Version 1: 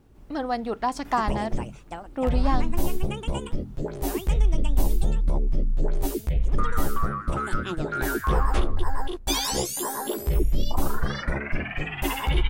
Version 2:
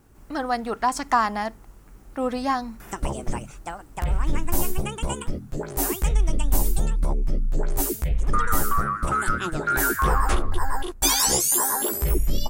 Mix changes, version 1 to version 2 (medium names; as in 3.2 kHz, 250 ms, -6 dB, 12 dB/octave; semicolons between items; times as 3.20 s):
background: entry +1.75 s; master: add FFT filter 540 Hz 0 dB, 1.4 kHz +7 dB, 3.5 kHz +1 dB, 7.6 kHz +11 dB